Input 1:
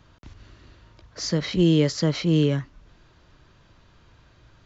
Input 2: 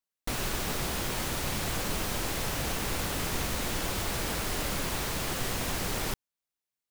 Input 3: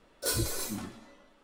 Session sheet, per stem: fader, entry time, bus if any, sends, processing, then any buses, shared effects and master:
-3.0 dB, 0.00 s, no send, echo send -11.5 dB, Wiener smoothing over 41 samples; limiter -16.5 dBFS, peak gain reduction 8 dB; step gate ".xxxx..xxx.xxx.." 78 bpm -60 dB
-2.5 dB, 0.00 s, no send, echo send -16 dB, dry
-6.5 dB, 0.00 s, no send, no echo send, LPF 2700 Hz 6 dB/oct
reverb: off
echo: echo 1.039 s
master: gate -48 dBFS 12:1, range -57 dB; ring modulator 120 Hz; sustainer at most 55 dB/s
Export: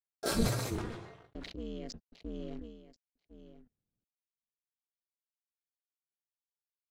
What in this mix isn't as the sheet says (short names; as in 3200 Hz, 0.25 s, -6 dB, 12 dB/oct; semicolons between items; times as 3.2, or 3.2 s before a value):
stem 1 -3.0 dB -> -14.0 dB; stem 2: muted; stem 3 -6.5 dB -> +4.0 dB